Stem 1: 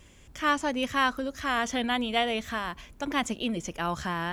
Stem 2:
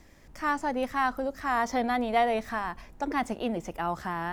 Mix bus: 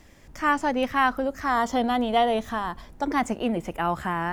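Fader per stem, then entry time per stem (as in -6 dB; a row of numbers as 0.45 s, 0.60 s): -7.0 dB, +2.5 dB; 0.00 s, 0.00 s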